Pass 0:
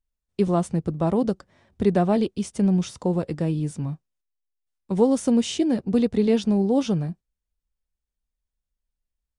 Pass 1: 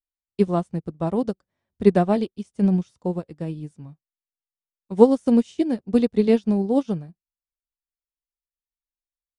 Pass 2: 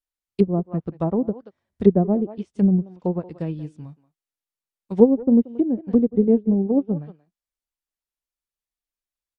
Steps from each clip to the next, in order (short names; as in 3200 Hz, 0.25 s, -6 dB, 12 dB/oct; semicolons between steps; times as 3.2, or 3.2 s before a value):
upward expander 2.5:1, over -33 dBFS; gain +7.5 dB
speakerphone echo 0.18 s, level -17 dB; treble ducked by the level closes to 470 Hz, closed at -18.5 dBFS; gain +2 dB